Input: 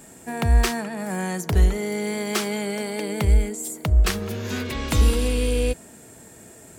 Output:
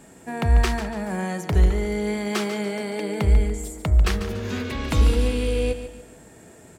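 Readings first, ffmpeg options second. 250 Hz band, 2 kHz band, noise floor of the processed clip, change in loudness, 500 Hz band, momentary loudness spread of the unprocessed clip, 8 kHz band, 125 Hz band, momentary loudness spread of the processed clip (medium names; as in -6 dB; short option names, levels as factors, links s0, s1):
+0.5 dB, -1.0 dB, -49 dBFS, 0.0 dB, +0.5 dB, 8 LU, -6.0 dB, +0.5 dB, 8 LU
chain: -filter_complex "[0:a]lowpass=f=3800:p=1,bandreject=f=114.4:t=h:w=4,bandreject=f=228.8:t=h:w=4,bandreject=f=343.2:t=h:w=4,bandreject=f=457.6:t=h:w=4,bandreject=f=572:t=h:w=4,bandreject=f=686.4:t=h:w=4,bandreject=f=800.8:t=h:w=4,bandreject=f=915.2:t=h:w=4,bandreject=f=1029.6:t=h:w=4,bandreject=f=1144:t=h:w=4,bandreject=f=1258.4:t=h:w=4,bandreject=f=1372.8:t=h:w=4,bandreject=f=1487.2:t=h:w=4,bandreject=f=1601.6:t=h:w=4,bandreject=f=1716:t=h:w=4,bandreject=f=1830.4:t=h:w=4,bandreject=f=1944.8:t=h:w=4,bandreject=f=2059.2:t=h:w=4,bandreject=f=2173.6:t=h:w=4,bandreject=f=2288:t=h:w=4,asplit=2[s0][s1];[s1]aecho=0:1:144|288|432|576:0.282|0.104|0.0386|0.0143[s2];[s0][s2]amix=inputs=2:normalize=0"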